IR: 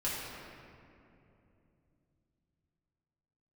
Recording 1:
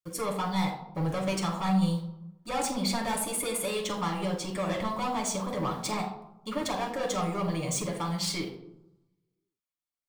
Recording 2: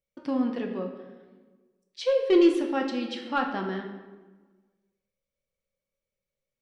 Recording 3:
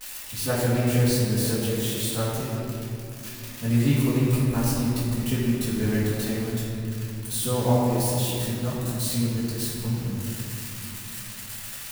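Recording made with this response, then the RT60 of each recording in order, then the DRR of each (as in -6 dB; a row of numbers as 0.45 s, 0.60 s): 3; 0.85 s, 1.3 s, 2.8 s; -0.5 dB, 2.0 dB, -9.0 dB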